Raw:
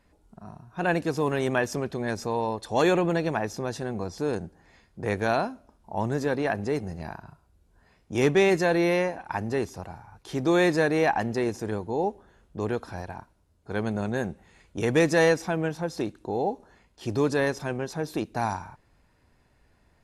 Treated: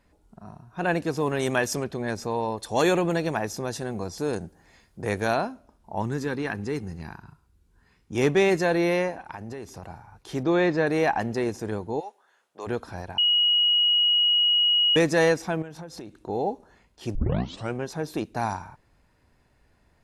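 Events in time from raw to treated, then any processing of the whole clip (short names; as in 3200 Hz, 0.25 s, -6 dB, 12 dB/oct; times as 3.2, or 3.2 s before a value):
1.39–1.84 high shelf 3500 Hz +9.5 dB
2.57–5.34 high shelf 5900 Hz +9 dB
6.02–8.17 bell 630 Hz -14 dB 0.52 oct
9.14–9.83 compressor, threshold -33 dBFS
10.43–10.87 air absorption 160 m
11.99–12.66 HPF 1400 Hz -> 570 Hz
13.18–14.96 bleep 2900 Hz -17.5 dBFS
15.62–16.29 compressor 10:1, threshold -35 dBFS
17.15 tape start 0.59 s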